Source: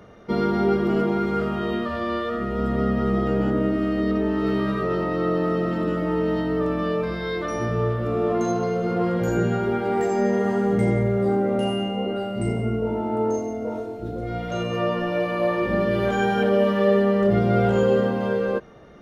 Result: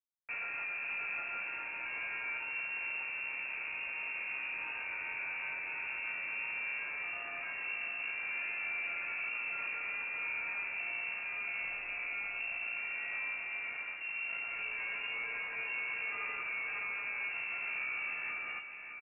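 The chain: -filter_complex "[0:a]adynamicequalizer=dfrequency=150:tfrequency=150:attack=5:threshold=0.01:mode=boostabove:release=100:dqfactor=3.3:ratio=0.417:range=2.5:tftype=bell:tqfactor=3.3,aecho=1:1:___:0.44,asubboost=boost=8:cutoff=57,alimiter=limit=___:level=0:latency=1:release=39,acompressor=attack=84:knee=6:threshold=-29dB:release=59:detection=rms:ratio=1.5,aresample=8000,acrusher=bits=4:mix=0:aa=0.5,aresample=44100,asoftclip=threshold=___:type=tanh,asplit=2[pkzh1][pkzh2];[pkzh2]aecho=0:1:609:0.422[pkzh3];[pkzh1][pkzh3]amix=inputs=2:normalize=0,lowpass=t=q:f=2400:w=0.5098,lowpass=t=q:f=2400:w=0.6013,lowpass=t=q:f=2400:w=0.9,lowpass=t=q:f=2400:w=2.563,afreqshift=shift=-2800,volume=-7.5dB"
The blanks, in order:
2, -14.5dB, -29.5dB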